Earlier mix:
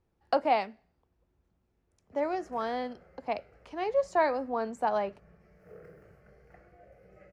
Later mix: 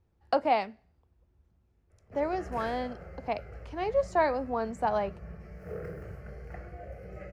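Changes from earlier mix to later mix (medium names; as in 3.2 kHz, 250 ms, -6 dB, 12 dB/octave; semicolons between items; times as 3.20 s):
background +10.5 dB; master: add peaking EQ 73 Hz +10 dB 1.5 oct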